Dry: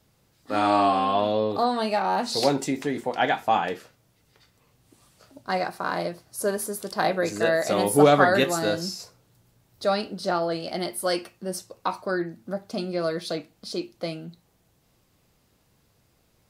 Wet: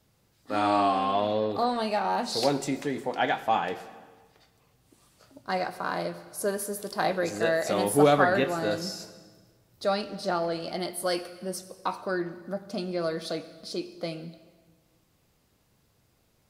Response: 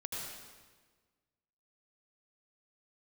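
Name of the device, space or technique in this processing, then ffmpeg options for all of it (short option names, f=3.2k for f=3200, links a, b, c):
saturated reverb return: -filter_complex "[0:a]asplit=2[a][b];[1:a]atrim=start_sample=2205[c];[b][c]afir=irnorm=-1:irlink=0,asoftclip=type=tanh:threshold=-21.5dB,volume=-11.5dB[d];[a][d]amix=inputs=2:normalize=0,asettb=1/sr,asplit=3[e][f][g];[e]atrim=end=8.164[h];[f]atrim=start=8.16:end=8.71,asetpts=PTS-STARTPTS,afade=t=in:d=0.004:c=qsin,afade=t=out:st=0.546:d=0.004:c=qsin,acrossover=split=3200[i][j];[j]acompressor=threshold=-41dB:ratio=4:attack=1:release=60[k];[i][k]amix=inputs=2:normalize=0[l];[g]atrim=start=8.706[m];[h][l]acrossfade=d=0.004:c1=hsin:c2=qsin[n];[n][m]acrossfade=d=0.004:c1=qsin:c2=hsin,volume=-4dB"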